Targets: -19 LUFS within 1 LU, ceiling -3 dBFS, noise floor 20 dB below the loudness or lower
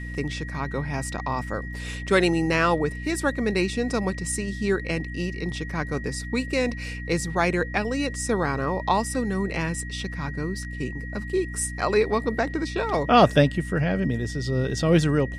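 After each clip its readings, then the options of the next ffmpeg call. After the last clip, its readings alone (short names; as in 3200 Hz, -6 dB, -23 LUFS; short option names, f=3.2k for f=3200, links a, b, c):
hum 60 Hz; harmonics up to 300 Hz; hum level -32 dBFS; steady tone 1900 Hz; tone level -38 dBFS; loudness -25.0 LUFS; peak -4.5 dBFS; loudness target -19.0 LUFS
-> -af "bandreject=f=60:t=h:w=4,bandreject=f=120:t=h:w=4,bandreject=f=180:t=h:w=4,bandreject=f=240:t=h:w=4,bandreject=f=300:t=h:w=4"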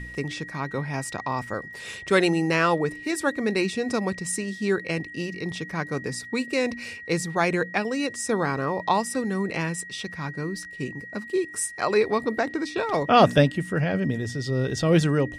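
hum none; steady tone 1900 Hz; tone level -38 dBFS
-> -af "bandreject=f=1.9k:w=30"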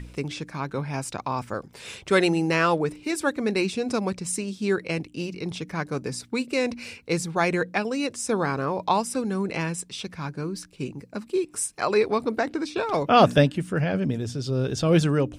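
steady tone none; loudness -25.5 LUFS; peak -5.0 dBFS; loudness target -19.0 LUFS
-> -af "volume=6.5dB,alimiter=limit=-3dB:level=0:latency=1"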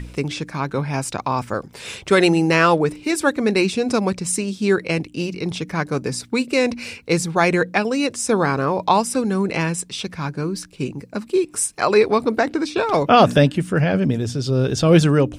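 loudness -19.5 LUFS; peak -3.0 dBFS; noise floor -44 dBFS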